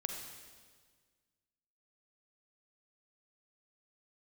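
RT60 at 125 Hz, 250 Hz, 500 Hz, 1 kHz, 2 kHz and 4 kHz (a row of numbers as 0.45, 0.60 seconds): 1.9, 1.9, 1.7, 1.5, 1.5, 1.5 seconds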